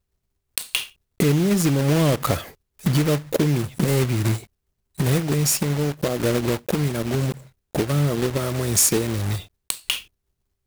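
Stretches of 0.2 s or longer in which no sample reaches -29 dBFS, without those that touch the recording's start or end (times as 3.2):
0.84–1.2
2.44–2.85
4.37–4.99
7.32–7.75
9.4–9.7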